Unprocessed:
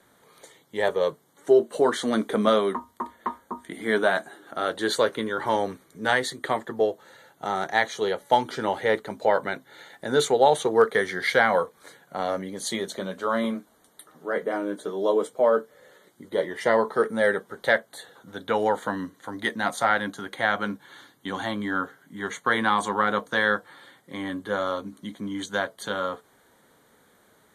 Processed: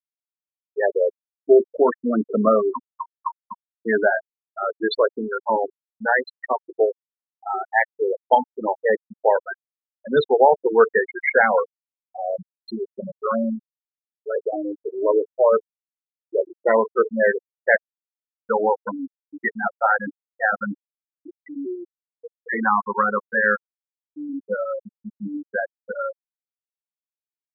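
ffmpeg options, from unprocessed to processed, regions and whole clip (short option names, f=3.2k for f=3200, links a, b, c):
-filter_complex "[0:a]asettb=1/sr,asplit=3[a][b][c];[a]atrim=end=21.274[d];[b]atrim=start=21.27:end=22.53,asetpts=PTS-STARTPTS,afade=t=in:d=0.004:c=qsin,afade=t=out:st=1.256:d=0.004:c=qsin,lowshelf=f=140:g=-6.5,afreqshift=74,asuperstop=centerf=940:order=8:qfactor=0.69[e];[c]atrim=start=22.526[f];[d][e]acrossfade=d=0.004:c1=hsin:c2=qsin[g];[g][f]acrossfade=d=0.004:c1=qsin:c2=hsin,afftfilt=real='re*gte(hypot(re,im),0.2)':imag='im*gte(hypot(re,im),0.2)':win_size=1024:overlap=0.75,highshelf=f=3.9k:g=6,volume=4dB"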